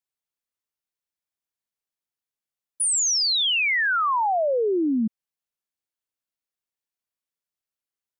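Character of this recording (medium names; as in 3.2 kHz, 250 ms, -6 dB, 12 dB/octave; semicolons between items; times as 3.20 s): noise floor -92 dBFS; spectral tilt -0.5 dB/octave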